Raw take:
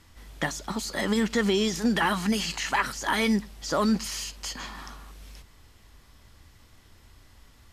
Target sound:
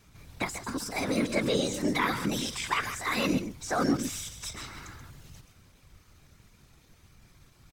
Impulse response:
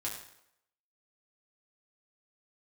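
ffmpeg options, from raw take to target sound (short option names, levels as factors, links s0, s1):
-af "aecho=1:1:137:0.316,asetrate=52444,aresample=44100,atempo=0.840896,afftfilt=real='hypot(re,im)*cos(2*PI*random(0))':imag='hypot(re,im)*sin(2*PI*random(1))':win_size=512:overlap=0.75,volume=1.33"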